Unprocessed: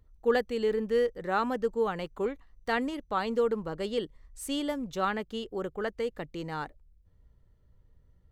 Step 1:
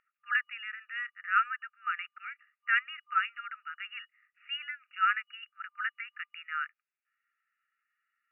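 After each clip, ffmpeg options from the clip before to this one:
-af "afftfilt=real='re*between(b*sr/4096,1200,2900)':imag='im*between(b*sr/4096,1200,2900)':win_size=4096:overlap=0.75,volume=2.24"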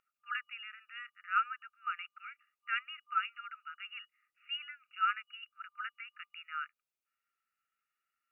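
-af "equalizer=f=1800:t=o:w=0.51:g=-13.5"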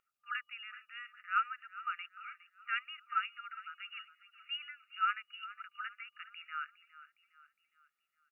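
-af "aecho=1:1:411|822|1233|1644:0.158|0.0713|0.0321|0.0144,volume=0.891"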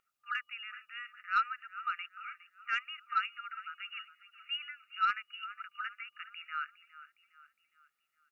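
-af "asoftclip=type=tanh:threshold=0.0891,volume=1.41"

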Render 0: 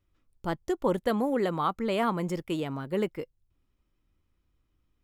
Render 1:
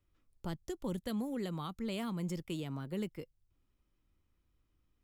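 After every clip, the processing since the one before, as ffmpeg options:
-filter_complex "[0:a]acrossover=split=240|3000[s0][s1][s2];[s1]acompressor=threshold=0.00794:ratio=4[s3];[s0][s3][s2]amix=inputs=3:normalize=0,volume=0.708"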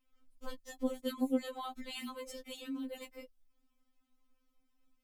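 -af "afftfilt=real='re*3.46*eq(mod(b,12),0)':imag='im*3.46*eq(mod(b,12),0)':win_size=2048:overlap=0.75,volume=1.58"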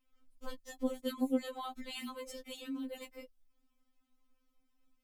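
-af anull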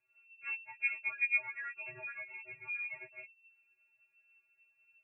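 -af "lowpass=f=2300:t=q:w=0.5098,lowpass=f=2300:t=q:w=0.6013,lowpass=f=2300:t=q:w=0.9,lowpass=f=2300:t=q:w=2.563,afreqshift=-2700"

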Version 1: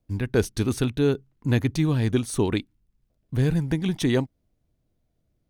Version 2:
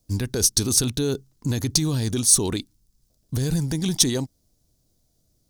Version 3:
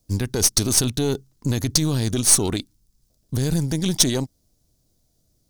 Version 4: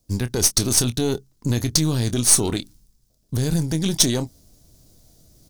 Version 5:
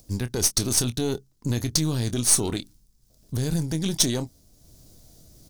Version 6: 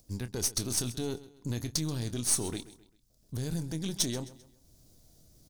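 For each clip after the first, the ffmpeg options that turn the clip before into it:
-af "alimiter=limit=0.112:level=0:latency=1:release=46,highshelf=f=3600:t=q:w=1.5:g=13.5,volume=1.5"
-af "aeval=exprs='0.891*(cos(1*acos(clip(val(0)/0.891,-1,1)))-cos(1*PI/2))+0.0562*(cos(8*acos(clip(val(0)/0.891,-1,1)))-cos(8*PI/2))':c=same,volume=1.12"
-filter_complex "[0:a]areverse,acompressor=mode=upward:threshold=0.01:ratio=2.5,areverse,asplit=2[s0][s1];[s1]adelay=25,volume=0.251[s2];[s0][s2]amix=inputs=2:normalize=0"
-af "acompressor=mode=upward:threshold=0.0112:ratio=2.5,volume=0.631"
-af "aecho=1:1:131|262|393:0.141|0.0551|0.0215,volume=0.376"

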